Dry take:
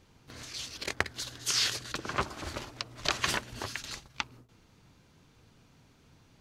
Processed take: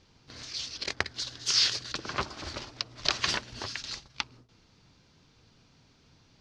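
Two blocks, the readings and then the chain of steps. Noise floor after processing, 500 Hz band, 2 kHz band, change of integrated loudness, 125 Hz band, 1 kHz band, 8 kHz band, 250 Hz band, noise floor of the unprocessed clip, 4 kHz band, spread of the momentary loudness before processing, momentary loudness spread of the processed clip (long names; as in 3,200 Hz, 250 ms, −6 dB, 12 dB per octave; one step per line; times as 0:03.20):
−63 dBFS, −1.5 dB, −0.5 dB, +2.5 dB, −1.5 dB, −1.0 dB, 0.0 dB, −1.5 dB, −63 dBFS, +4.5 dB, 13 LU, 15 LU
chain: low-pass with resonance 5,100 Hz, resonance Q 2.3
level −1.5 dB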